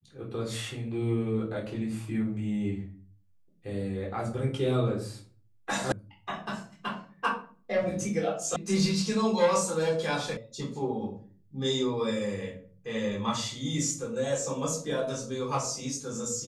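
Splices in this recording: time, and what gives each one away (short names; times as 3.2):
5.92 sound cut off
8.56 sound cut off
10.37 sound cut off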